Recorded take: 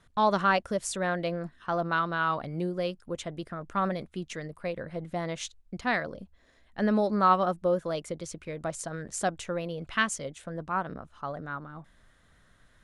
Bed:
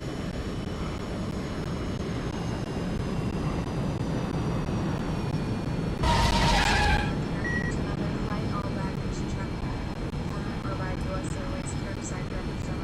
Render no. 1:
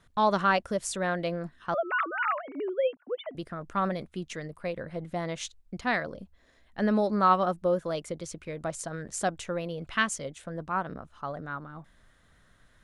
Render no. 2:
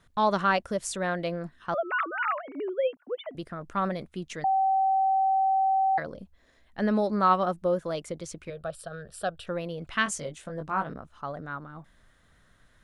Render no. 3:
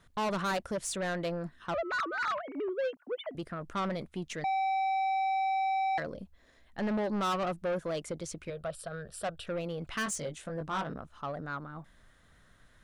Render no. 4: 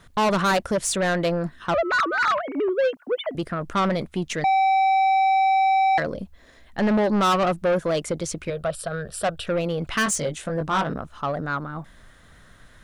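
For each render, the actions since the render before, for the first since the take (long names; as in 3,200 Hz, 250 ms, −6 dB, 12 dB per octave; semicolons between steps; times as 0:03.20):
0:01.74–0:03.35: three sine waves on the formant tracks
0:04.44–0:05.98: beep over 770 Hz −20.5 dBFS; 0:08.50–0:09.47: phaser with its sweep stopped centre 1,400 Hz, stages 8; 0:10.04–0:10.93: double-tracking delay 20 ms −5.5 dB
soft clipping −28 dBFS, distortion −9 dB
level +11 dB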